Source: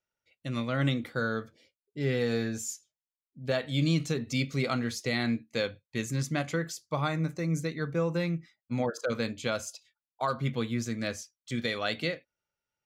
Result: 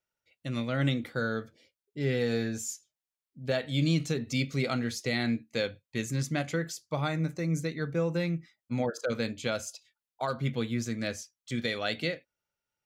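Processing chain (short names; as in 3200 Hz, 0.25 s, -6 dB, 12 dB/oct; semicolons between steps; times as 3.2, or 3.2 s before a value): dynamic EQ 1100 Hz, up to -6 dB, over -53 dBFS, Q 3.7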